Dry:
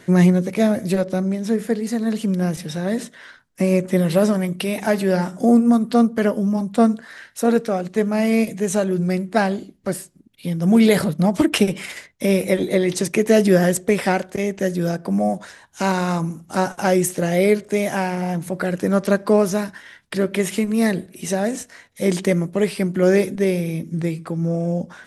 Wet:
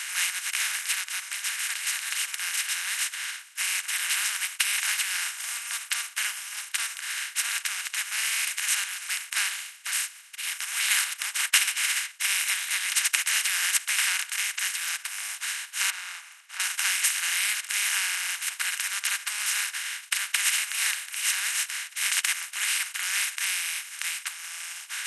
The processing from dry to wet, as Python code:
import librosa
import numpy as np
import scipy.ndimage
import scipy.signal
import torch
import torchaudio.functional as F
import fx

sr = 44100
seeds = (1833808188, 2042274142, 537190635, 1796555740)

y = fx.lowpass(x, sr, hz=1100.0, slope=12, at=(15.9, 16.6))
y = fx.bin_compress(y, sr, power=0.2)
y = scipy.signal.sosfilt(scipy.signal.bessel(8, 2200.0, 'highpass', norm='mag', fs=sr, output='sos'), y)
y = fx.upward_expand(y, sr, threshold_db=-33.0, expansion=2.5)